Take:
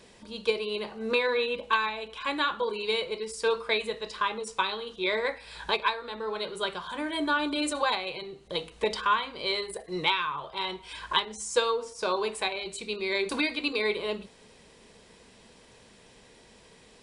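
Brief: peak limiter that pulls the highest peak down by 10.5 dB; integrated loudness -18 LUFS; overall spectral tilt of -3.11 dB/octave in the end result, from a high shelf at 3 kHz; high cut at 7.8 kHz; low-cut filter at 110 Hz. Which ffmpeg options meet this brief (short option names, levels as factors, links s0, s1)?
-af "highpass=110,lowpass=7800,highshelf=f=3000:g=-3.5,volume=5.62,alimiter=limit=0.473:level=0:latency=1"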